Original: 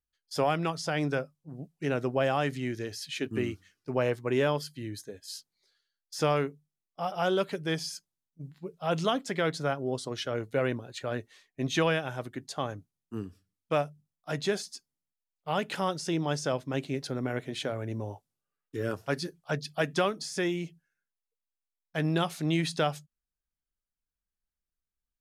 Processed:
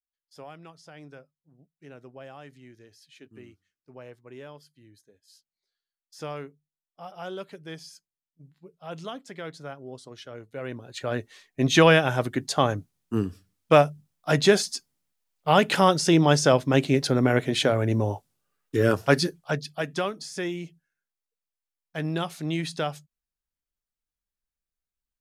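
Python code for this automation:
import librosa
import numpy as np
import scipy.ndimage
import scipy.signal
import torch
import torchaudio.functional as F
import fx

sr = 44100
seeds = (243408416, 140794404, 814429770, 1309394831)

y = fx.gain(x, sr, db=fx.line((5.2, -17.0), (6.27, -9.0), (10.55, -9.0), (10.99, 3.5), (11.99, 11.0), (19.19, 11.0), (19.77, -1.0)))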